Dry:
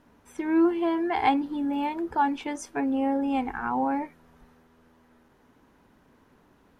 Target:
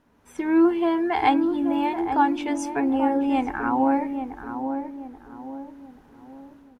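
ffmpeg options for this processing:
-filter_complex "[0:a]dynaudnorm=f=100:g=5:m=7.5dB,asplit=2[a][b];[b]adelay=833,lowpass=f=860:p=1,volume=-6dB,asplit=2[c][d];[d]adelay=833,lowpass=f=860:p=1,volume=0.45,asplit=2[e][f];[f]adelay=833,lowpass=f=860:p=1,volume=0.45,asplit=2[g][h];[h]adelay=833,lowpass=f=860:p=1,volume=0.45,asplit=2[i][j];[j]adelay=833,lowpass=f=860:p=1,volume=0.45[k];[c][e][g][i][k]amix=inputs=5:normalize=0[l];[a][l]amix=inputs=2:normalize=0,volume=-4dB"

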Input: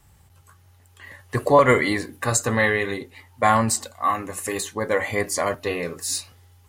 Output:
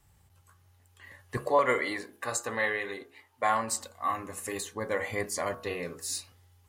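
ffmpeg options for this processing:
-filter_complex "[0:a]asettb=1/sr,asplit=3[a][b][c];[a]atrim=end=1.374[d];[b]atrim=start=1.37:end=3.72,asetpts=PTS-STARTPTS,afade=t=in:d=0.004:c=qsin,afade=t=out:st=2.346:d=0.004:c=qsin,bass=f=250:g=-14,treble=f=4k:g=-3[e];[c]atrim=start=3.716[f];[d][e]acrossfade=d=0.004:c1=hsin:c2=qsin[g];[g][f]acrossfade=d=0.004:c1=qsin:c2=hsin,bandreject=f=69.51:t=h:w=4,bandreject=f=139.02:t=h:w=4,bandreject=f=208.53:t=h:w=4,bandreject=f=278.04:t=h:w=4,bandreject=f=347.55:t=h:w=4,bandreject=f=417.06:t=h:w=4,bandreject=f=486.57:t=h:w=4,bandreject=f=556.08:t=h:w=4,bandreject=f=625.59:t=h:w=4,bandreject=f=695.1:t=h:w=4,bandreject=f=764.61:t=h:w=4,bandreject=f=834.12:t=h:w=4,bandreject=f=903.63:t=h:w=4,bandreject=f=973.14:t=h:w=4,bandreject=f=1.04265k:t=h:w=4,bandreject=f=1.11216k:t=h:w=4,bandreject=f=1.18167k:t=h:w=4,bandreject=f=1.25118k:t=h:w=4,bandreject=f=1.32069k:t=h:w=4,bandreject=f=1.3902k:t=h:w=4,bandreject=f=1.45971k:t=h:w=4,bandreject=f=1.52922k:t=h:w=4,bandreject=f=1.59873k:t=h:w=4,bandreject=f=1.66824k:t=h:w=4,volume=-8dB"

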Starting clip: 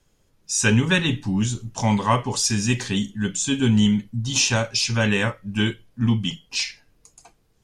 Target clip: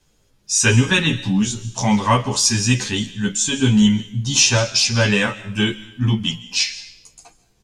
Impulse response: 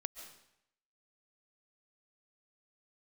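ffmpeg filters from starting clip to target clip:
-filter_complex "[0:a]asplit=2[a][b];[b]equalizer=f=4.8k:w=0.46:g=11[c];[1:a]atrim=start_sample=2205[d];[c][d]afir=irnorm=-1:irlink=0,volume=-8.5dB[e];[a][e]amix=inputs=2:normalize=0,asplit=2[f][g];[g]adelay=11.3,afreqshift=2.1[h];[f][h]amix=inputs=2:normalize=1,volume=3.5dB"

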